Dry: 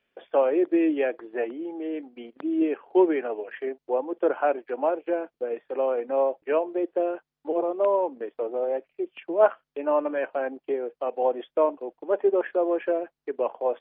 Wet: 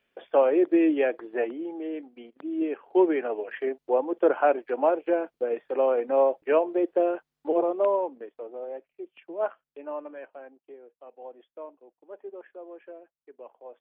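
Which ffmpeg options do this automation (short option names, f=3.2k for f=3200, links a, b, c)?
-af "volume=9.5dB,afade=t=out:st=1.38:d=1.01:silence=0.421697,afade=t=in:st=2.39:d=1.23:silence=0.375837,afade=t=out:st=7.57:d=0.76:silence=0.266073,afade=t=out:st=9.63:d=0.96:silence=0.334965"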